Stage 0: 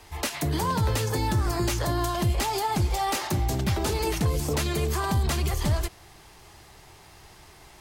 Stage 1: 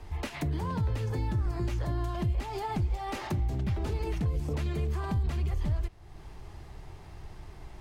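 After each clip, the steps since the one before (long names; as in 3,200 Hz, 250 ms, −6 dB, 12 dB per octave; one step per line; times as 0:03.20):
spectral tilt −3 dB per octave
downward compressor 2 to 1, threshold −34 dBFS, peak gain reduction 13.5 dB
dynamic equaliser 2,400 Hz, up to +5 dB, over −57 dBFS, Q 1
level −2.5 dB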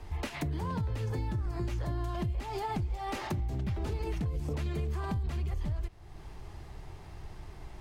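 downward compressor, threshold −29 dBFS, peak gain reduction 5.5 dB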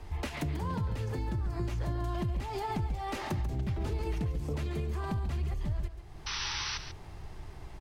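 sound drawn into the spectrogram noise, 0:06.26–0:06.78, 810–6,100 Hz −36 dBFS
single-tap delay 140 ms −10.5 dB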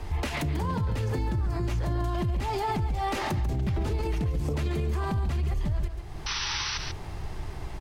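brickwall limiter −30 dBFS, peak gain reduction 7.5 dB
level +9 dB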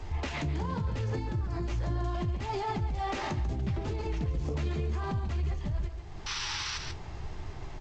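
flanger 0.78 Hz, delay 7.2 ms, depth 9.5 ms, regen −47%
G.722 64 kbit/s 16,000 Hz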